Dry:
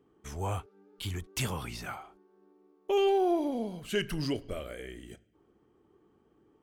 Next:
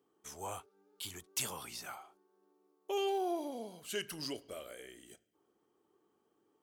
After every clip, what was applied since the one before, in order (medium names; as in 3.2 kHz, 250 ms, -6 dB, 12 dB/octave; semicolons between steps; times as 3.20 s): high-pass 1.4 kHz 6 dB/octave; peaking EQ 2.1 kHz -9 dB 1.9 oct; trim +3 dB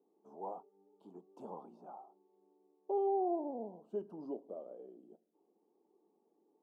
elliptic band-pass 190–880 Hz, stop band 40 dB; trim +1.5 dB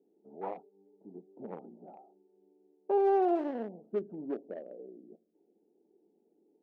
local Wiener filter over 41 samples; level-controlled noise filter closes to 1.1 kHz, open at -30 dBFS; trim +7 dB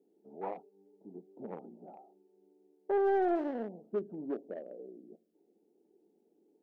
saturation -22.5 dBFS, distortion -17 dB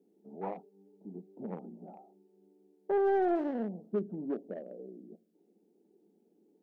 peaking EQ 190 Hz +9 dB 0.69 oct